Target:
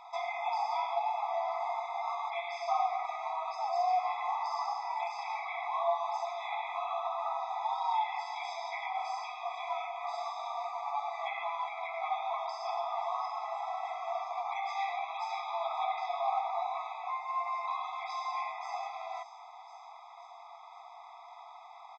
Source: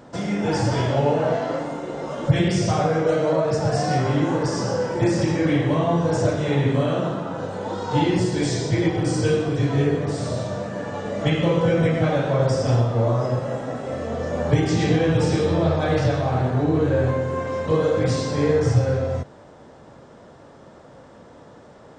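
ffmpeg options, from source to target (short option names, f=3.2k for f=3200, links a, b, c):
-filter_complex "[0:a]lowpass=f=5.8k:w=0.5412,lowpass=f=5.8k:w=1.3066,acrossover=split=230|4400[a][b][c];[b]acontrast=78[d];[c]aecho=1:1:526|1052|1578|2104|2630|3156:0.188|0.109|0.0634|0.0368|0.0213|0.0124[e];[a][d][e]amix=inputs=3:normalize=0,acrossover=split=550|1700[f][g][h];[f]acompressor=threshold=-20dB:ratio=4[i];[g]acompressor=threshold=-26dB:ratio=4[j];[h]acompressor=threshold=-44dB:ratio=4[k];[i][j][k]amix=inputs=3:normalize=0,afftfilt=real='re*eq(mod(floor(b*sr/1024/660),2),1)':imag='im*eq(mod(floor(b*sr/1024/660),2),1)':win_size=1024:overlap=0.75,volume=-3.5dB"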